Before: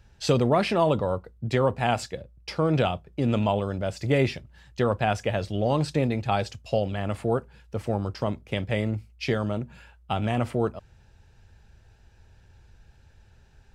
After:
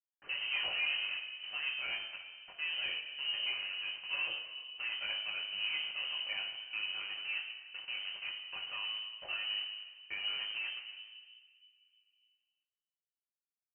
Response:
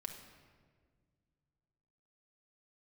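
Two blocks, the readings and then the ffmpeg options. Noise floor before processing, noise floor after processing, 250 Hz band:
−57 dBFS, below −85 dBFS, below −40 dB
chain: -filter_complex "[0:a]bandreject=frequency=50:width_type=h:width=6,bandreject=frequency=100:width_type=h:width=6,bandreject=frequency=150:width_type=h:width=6,bandreject=frequency=200:width_type=h:width=6,bandreject=frequency=250:width_type=h:width=6,bandreject=frequency=300:width_type=h:width=6,aeval=exprs='(tanh(10*val(0)+0.05)-tanh(0.05))/10':channel_layout=same,flanger=delay=19:depth=2.1:speed=0.18,aresample=16000,aeval=exprs='val(0)*gte(abs(val(0)),0.0168)':channel_layout=same,aresample=44100,asplit=2[link_01][link_02];[link_02]adelay=303,lowpass=frequency=1700:poles=1,volume=-23.5dB,asplit=2[link_03][link_04];[link_04]adelay=303,lowpass=frequency=1700:poles=1,volume=0.41,asplit=2[link_05][link_06];[link_06]adelay=303,lowpass=frequency=1700:poles=1,volume=0.41[link_07];[link_01][link_03][link_05][link_07]amix=inputs=4:normalize=0[link_08];[1:a]atrim=start_sample=2205[link_09];[link_08][link_09]afir=irnorm=-1:irlink=0,lowpass=frequency=2600:width_type=q:width=0.5098,lowpass=frequency=2600:width_type=q:width=0.6013,lowpass=frequency=2600:width_type=q:width=0.9,lowpass=frequency=2600:width_type=q:width=2.563,afreqshift=-3100,volume=-5.5dB"

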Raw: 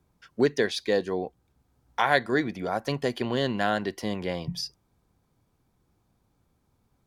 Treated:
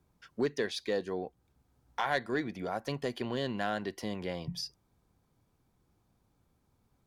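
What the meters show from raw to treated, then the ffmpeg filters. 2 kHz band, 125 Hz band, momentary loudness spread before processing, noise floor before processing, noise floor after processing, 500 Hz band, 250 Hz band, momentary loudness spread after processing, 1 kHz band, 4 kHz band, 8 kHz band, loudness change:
−8.5 dB, −7.0 dB, 11 LU, −72 dBFS, −74 dBFS, −7.5 dB, −7.0 dB, 8 LU, −7.5 dB, −7.0 dB, −5.5 dB, −7.5 dB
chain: -filter_complex "[0:a]asplit=2[link_01][link_02];[link_02]acompressor=threshold=-36dB:ratio=6,volume=0dB[link_03];[link_01][link_03]amix=inputs=2:normalize=0,asoftclip=type=tanh:threshold=-10dB,volume=-8.5dB"

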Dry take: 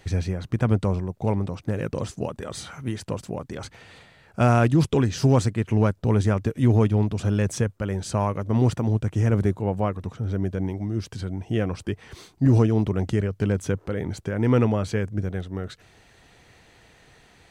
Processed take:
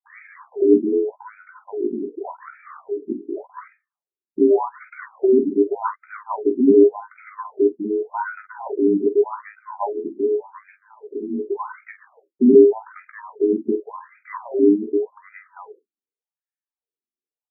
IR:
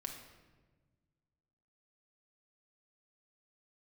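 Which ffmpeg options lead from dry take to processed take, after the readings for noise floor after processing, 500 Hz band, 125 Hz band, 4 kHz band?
below −85 dBFS, +9.0 dB, below −25 dB, below −40 dB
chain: -filter_complex "[0:a]afftfilt=real='real(if(between(b,1,1008),(2*floor((b-1)/24)+1)*24-b,b),0)':imag='imag(if(between(b,1,1008),(2*floor((b-1)/24)+1)*24-b,b),0)*if(between(b,1,1008),-1,1)':win_size=2048:overlap=0.75,agate=range=-50dB:threshold=-42dB:ratio=16:detection=peak,aemphasis=mode=reproduction:type=bsi,asplit=2[link_01][link_02];[link_02]aecho=0:1:17|47:0.398|0.355[link_03];[link_01][link_03]amix=inputs=2:normalize=0,aresample=32000,aresample=44100,afftfilt=real='re*between(b*sr/1024,270*pow(1800/270,0.5+0.5*sin(2*PI*0.86*pts/sr))/1.41,270*pow(1800/270,0.5+0.5*sin(2*PI*0.86*pts/sr))*1.41)':imag='im*between(b*sr/1024,270*pow(1800/270,0.5+0.5*sin(2*PI*0.86*pts/sr))/1.41,270*pow(1800/270,0.5+0.5*sin(2*PI*0.86*pts/sr))*1.41)':win_size=1024:overlap=0.75,volume=3.5dB"

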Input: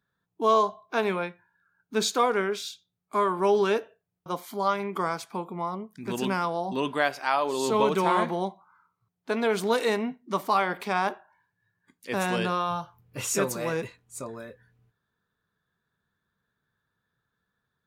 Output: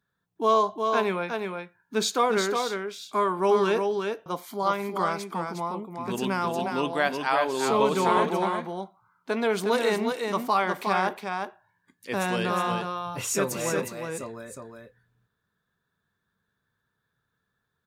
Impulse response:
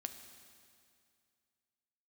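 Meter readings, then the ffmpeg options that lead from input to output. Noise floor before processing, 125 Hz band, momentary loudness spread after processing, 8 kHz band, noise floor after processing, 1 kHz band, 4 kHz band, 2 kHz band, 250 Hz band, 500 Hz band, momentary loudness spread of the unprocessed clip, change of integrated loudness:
−82 dBFS, +1.0 dB, 12 LU, +1.0 dB, −79 dBFS, +1.0 dB, +1.0 dB, +1.0 dB, +1.0 dB, +1.0 dB, 13 LU, +0.5 dB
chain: -af "aecho=1:1:361:0.562"

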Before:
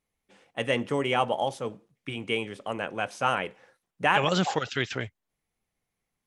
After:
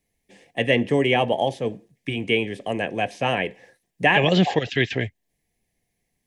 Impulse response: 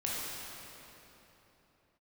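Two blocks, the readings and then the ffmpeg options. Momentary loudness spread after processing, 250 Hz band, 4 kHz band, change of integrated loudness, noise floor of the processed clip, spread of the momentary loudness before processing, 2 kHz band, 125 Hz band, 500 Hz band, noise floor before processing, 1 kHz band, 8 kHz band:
12 LU, +8.5 dB, +5.5 dB, +6.0 dB, −76 dBFS, 14 LU, +6.5 dB, +8.5 dB, +7.0 dB, −84 dBFS, +2.0 dB, −2.5 dB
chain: -filter_complex "[0:a]acrossover=split=360|810|4100[link_01][link_02][link_03][link_04];[link_03]asuperstop=centerf=1100:order=20:qfactor=1.3[link_05];[link_04]acompressor=threshold=-58dB:ratio=6[link_06];[link_01][link_02][link_05][link_06]amix=inputs=4:normalize=0,volume=8.5dB"

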